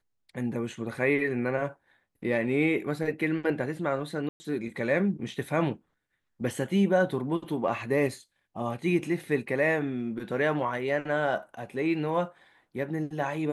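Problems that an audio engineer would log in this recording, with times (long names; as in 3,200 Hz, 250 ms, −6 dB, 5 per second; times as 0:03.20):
0:04.29–0:04.40: drop-out 110 ms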